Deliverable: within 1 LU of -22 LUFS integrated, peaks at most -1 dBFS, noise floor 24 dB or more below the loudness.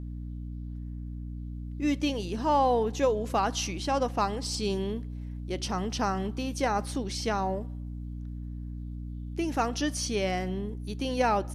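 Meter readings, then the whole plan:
hum 60 Hz; harmonics up to 300 Hz; hum level -35 dBFS; loudness -30.5 LUFS; peak -13.0 dBFS; loudness target -22.0 LUFS
-> de-hum 60 Hz, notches 5; gain +8.5 dB

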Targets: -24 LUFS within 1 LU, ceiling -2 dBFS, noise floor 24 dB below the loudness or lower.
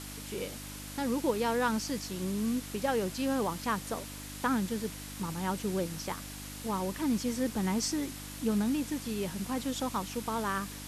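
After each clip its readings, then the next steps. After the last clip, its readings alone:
hum 50 Hz; harmonics up to 300 Hz; hum level -44 dBFS; noise floor -43 dBFS; noise floor target -57 dBFS; loudness -33.0 LUFS; peak -15.5 dBFS; loudness target -24.0 LUFS
-> de-hum 50 Hz, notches 6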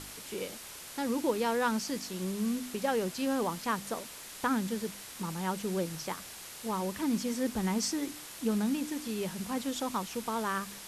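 hum none; noise floor -46 dBFS; noise floor target -58 dBFS
-> noise print and reduce 12 dB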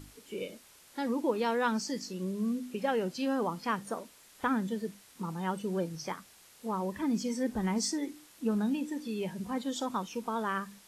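noise floor -58 dBFS; loudness -34.0 LUFS; peak -16.0 dBFS; loudness target -24.0 LUFS
-> gain +10 dB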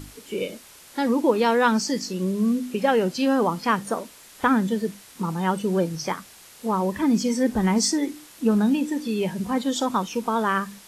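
loudness -24.0 LUFS; peak -6.0 dBFS; noise floor -48 dBFS

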